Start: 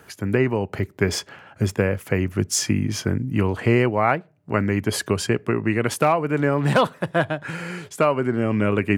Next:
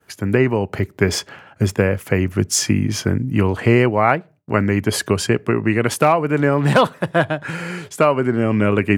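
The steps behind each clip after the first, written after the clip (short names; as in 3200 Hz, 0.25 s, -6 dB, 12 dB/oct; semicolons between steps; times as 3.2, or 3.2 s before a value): expander -42 dBFS; gain +4 dB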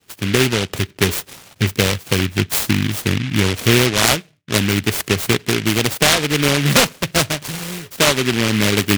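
noise-modulated delay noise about 2300 Hz, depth 0.29 ms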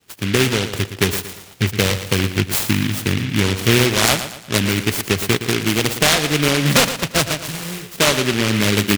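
feedback echo 0.116 s, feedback 40%, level -11 dB; gain -1 dB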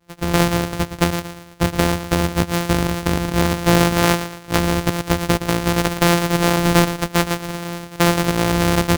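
sample sorter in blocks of 256 samples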